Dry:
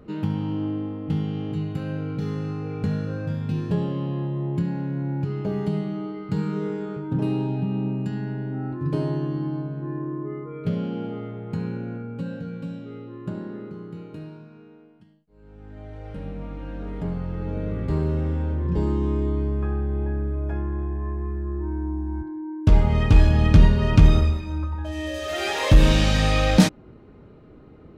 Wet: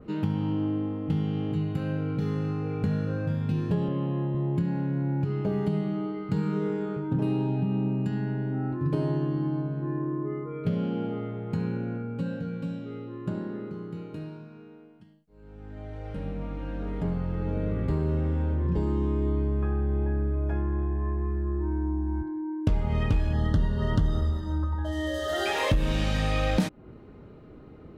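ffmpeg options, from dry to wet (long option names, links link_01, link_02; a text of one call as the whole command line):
ffmpeg -i in.wav -filter_complex "[0:a]asettb=1/sr,asplit=3[link_01][link_02][link_03];[link_01]atrim=end=3.884[link_04];[link_02]atrim=start=3.88:end=4.35,asetpts=PTS-STARTPTS,afade=type=in:duration=0.004:curve=qsin,afade=type=out:start_time=0.466:duration=0.004:curve=qsin,highpass=110,lowpass=3400[link_05];[link_03]atrim=start=4.346[link_06];[link_04][link_05]acrossfade=duration=0.004:curve1=hsin:curve2=qsin[link_07];[link_07][link_06]acrossfade=duration=0.004:curve1=qsin:curve2=hsin,asettb=1/sr,asplit=3[link_08][link_09][link_10];[link_08]atrim=end=23.334[link_11];[link_09]atrim=start=23.33:end=25.46,asetpts=PTS-STARTPTS,afade=type=in:duration=0.004:curve=qsin,afade=type=out:start_time=2.126:duration=0.004:curve=qsin,asuperstop=centerf=2400:order=12:qfactor=3.1[link_12];[link_10]atrim=start=25.456[link_13];[link_11][link_12]acrossfade=duration=0.004:curve1=hsin:curve2=qsin[link_14];[link_14][link_13]acrossfade=duration=0.004:curve1=qsin:curve2=hsin,acompressor=threshold=-22dB:ratio=4,adynamicequalizer=threshold=0.00158:dfrequency=5700:dqfactor=0.91:tfrequency=5700:tqfactor=0.91:attack=5:release=100:ratio=0.375:range=2.5:mode=cutabove:tftype=bell" out.wav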